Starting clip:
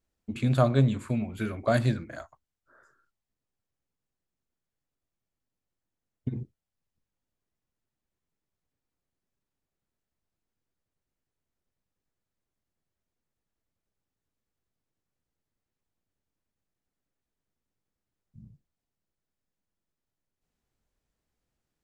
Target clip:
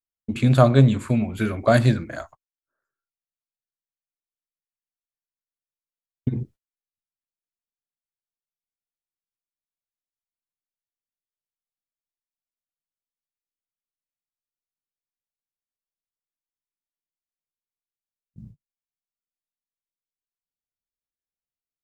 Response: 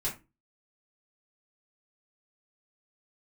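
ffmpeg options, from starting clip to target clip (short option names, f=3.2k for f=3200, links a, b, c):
-af "agate=range=-31dB:threshold=-51dB:ratio=16:detection=peak,volume=7.5dB"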